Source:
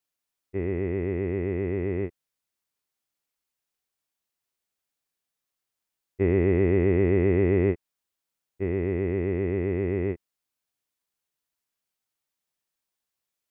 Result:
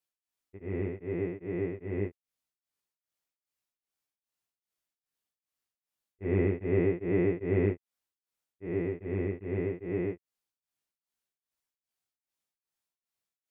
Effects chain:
pitch vibrato 11 Hz 9 cents
chorus effect 0.7 Hz, delay 17 ms, depth 2.5 ms
tremolo along a rectified sine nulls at 2.5 Hz

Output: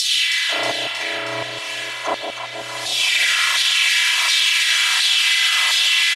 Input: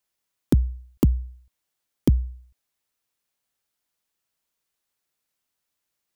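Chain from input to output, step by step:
phase-vocoder pitch shift without resampling +11.5 semitones
meter weighting curve D
treble cut that deepens with the level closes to 1,000 Hz, closed at −26 dBFS
comb filter 3 ms, depth 86%
upward compression, threshold −28 dBFS
low-pass filter 11,000 Hz 24 dB per octave
reversed playback
downward compressor 12 to 1, threshold −41 dBFS, peak gain reduction 23 dB
reversed playback
low-shelf EQ 88 Hz −9.5 dB
spring reverb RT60 2.9 s, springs 33 ms, chirp 45 ms, DRR −8.5 dB
auto-filter high-pass saw down 1.4 Hz 960–4,200 Hz
on a send: delay that swaps between a low-pass and a high-pass 158 ms, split 810 Hz, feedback 81%, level −4.5 dB
on the sum: boost into a limiter +33.5 dB
level −6 dB

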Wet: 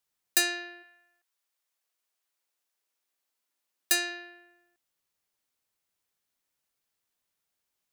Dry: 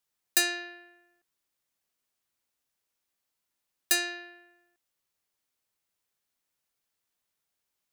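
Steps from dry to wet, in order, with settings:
0:00.82–0:04.09: high-pass filter 770 Hz → 190 Hz 12 dB per octave

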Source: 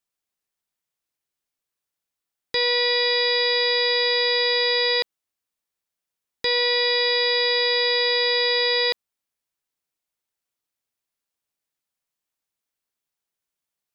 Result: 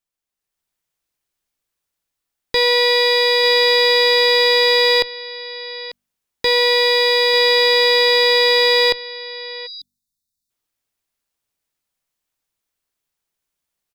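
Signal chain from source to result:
low-shelf EQ 80 Hz +9 dB
hum removal 48.36 Hz, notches 5
on a send: single-tap delay 893 ms −14 dB
on the sum: time-frequency box erased 0:09.67–0:10.50, 300–3,500 Hz
in parallel at −7 dB: comparator with hysteresis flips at −20 dBFS
on the sum: automatic gain control gain up to 7 dB
level −2 dB

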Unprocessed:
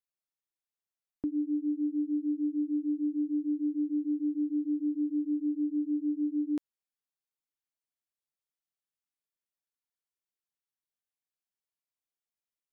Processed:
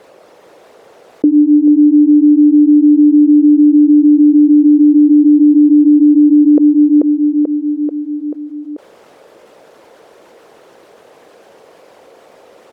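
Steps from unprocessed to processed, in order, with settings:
spectral envelope exaggerated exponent 1.5
resonant band-pass 500 Hz, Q 2.7
repeating echo 437 ms, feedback 42%, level −4.5 dB
boost into a limiter +33.5 dB
envelope flattener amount 50%
level −2 dB

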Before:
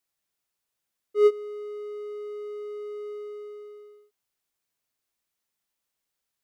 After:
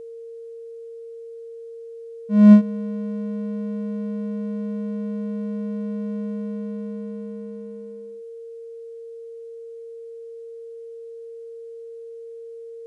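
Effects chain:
wrong playback speed 15 ips tape played at 7.5 ips
steady tone 460 Hz −43 dBFS
level +8 dB

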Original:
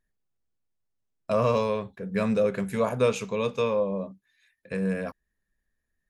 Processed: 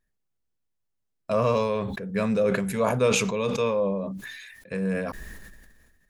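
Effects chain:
level that may fall only so fast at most 35 dB per second

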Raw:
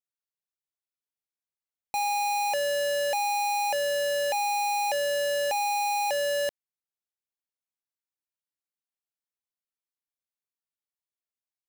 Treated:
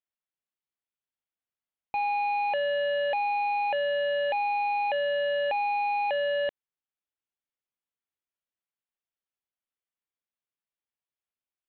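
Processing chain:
Butterworth low-pass 3,600 Hz 72 dB per octave

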